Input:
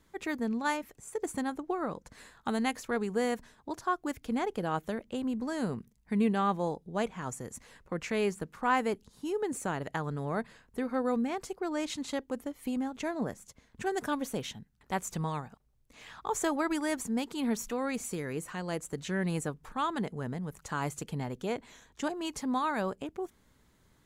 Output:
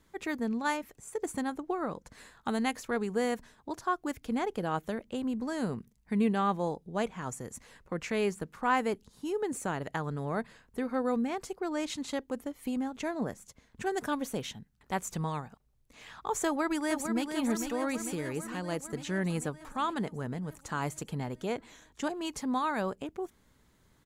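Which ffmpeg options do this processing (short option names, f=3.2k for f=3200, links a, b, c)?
-filter_complex "[0:a]asplit=2[a][b];[b]afade=t=in:st=16.45:d=0.01,afade=t=out:st=17.26:d=0.01,aecho=0:1:450|900|1350|1800|2250|2700|3150|3600|4050|4500|4950:0.446684|0.312679|0.218875|0.153212|0.107249|0.0750741|0.0525519|0.0367863|0.0257504|0.0180253|0.0126177[c];[a][c]amix=inputs=2:normalize=0"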